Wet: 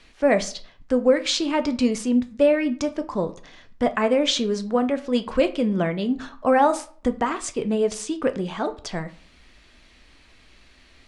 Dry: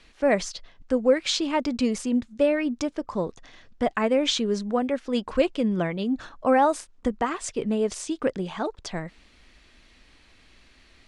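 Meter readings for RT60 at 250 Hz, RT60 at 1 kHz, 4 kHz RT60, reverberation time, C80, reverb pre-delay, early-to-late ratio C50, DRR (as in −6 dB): 0.50 s, 0.45 s, 0.30 s, 0.50 s, 20.5 dB, 9 ms, 16.5 dB, 9.0 dB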